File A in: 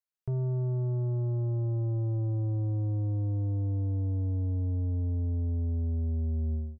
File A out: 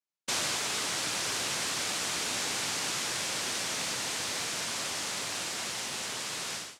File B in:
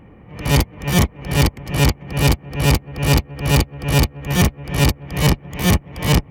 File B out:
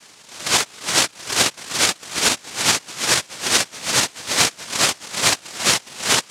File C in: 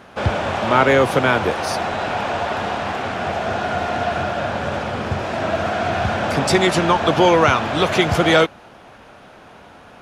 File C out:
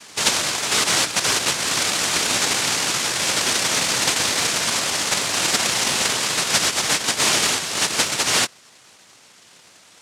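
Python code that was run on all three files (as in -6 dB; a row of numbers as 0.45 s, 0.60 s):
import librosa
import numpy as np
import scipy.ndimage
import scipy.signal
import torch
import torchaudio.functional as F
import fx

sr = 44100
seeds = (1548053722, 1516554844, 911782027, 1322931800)

y = fx.rider(x, sr, range_db=4, speed_s=0.5)
y = fx.noise_vocoder(y, sr, seeds[0], bands=1)
y = y * librosa.db_to_amplitude(-2.0)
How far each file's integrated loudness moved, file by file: 0.0 LU, 0.0 LU, +0.5 LU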